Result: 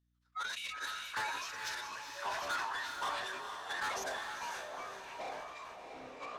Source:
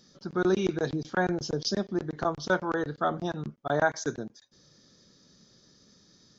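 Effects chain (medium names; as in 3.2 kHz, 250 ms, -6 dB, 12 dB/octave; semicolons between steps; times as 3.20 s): median filter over 9 samples; spectral noise reduction 26 dB; peaking EQ 3.8 kHz +4 dB 1.4 oct; in parallel at +1 dB: level held to a coarse grid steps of 14 dB; on the sum: inverse Chebyshev high-pass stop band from 260 Hz, stop band 70 dB; formant-preserving pitch shift -9 st; saturation -31 dBFS, distortion -6 dB; hum 60 Hz, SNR 33 dB; echo that smears into a reverb 461 ms, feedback 47%, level -5 dB; ever faster or slower copies 671 ms, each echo -7 st, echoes 3, each echo -6 dB; decay stretcher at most 30 dB/s; trim -2.5 dB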